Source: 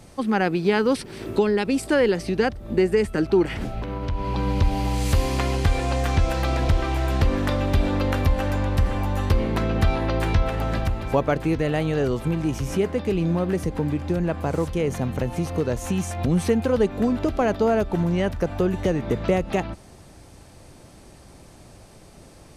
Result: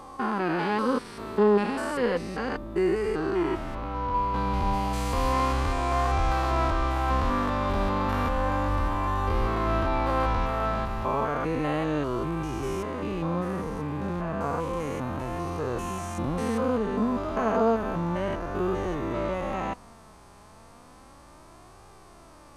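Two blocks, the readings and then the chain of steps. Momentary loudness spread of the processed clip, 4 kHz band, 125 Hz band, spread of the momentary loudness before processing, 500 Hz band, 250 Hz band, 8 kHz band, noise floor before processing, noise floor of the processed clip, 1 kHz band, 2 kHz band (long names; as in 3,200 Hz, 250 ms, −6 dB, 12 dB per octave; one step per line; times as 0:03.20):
6 LU, −6.0 dB, −7.5 dB, 5 LU, −4.5 dB, −5.0 dB, −7.0 dB, −48 dBFS, −51 dBFS, +2.5 dB, −3.5 dB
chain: spectrum averaged block by block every 200 ms
parametric band 1,100 Hz +13 dB 0.9 octaves
flanger 0.32 Hz, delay 2.4 ms, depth 2.6 ms, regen +44%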